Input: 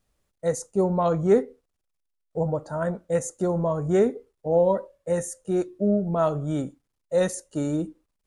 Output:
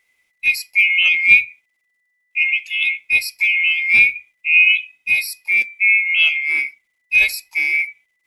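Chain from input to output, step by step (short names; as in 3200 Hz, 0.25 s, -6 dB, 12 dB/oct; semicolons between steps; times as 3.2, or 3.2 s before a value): band-swap scrambler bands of 2000 Hz; gain +7.5 dB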